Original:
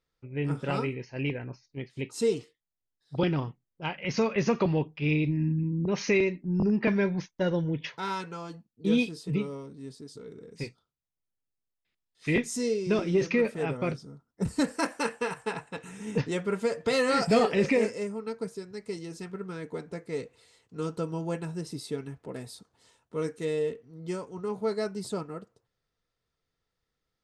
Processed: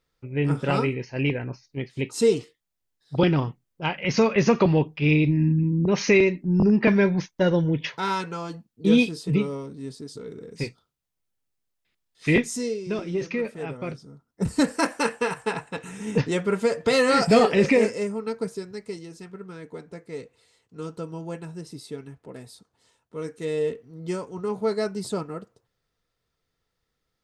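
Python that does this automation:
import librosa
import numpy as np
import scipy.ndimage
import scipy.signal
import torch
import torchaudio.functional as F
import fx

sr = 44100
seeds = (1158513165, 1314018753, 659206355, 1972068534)

y = fx.gain(x, sr, db=fx.line((12.33, 6.5), (12.82, -2.5), (13.87, -2.5), (14.57, 5.5), (18.65, 5.5), (19.12, -2.0), (23.21, -2.0), (23.68, 4.5)))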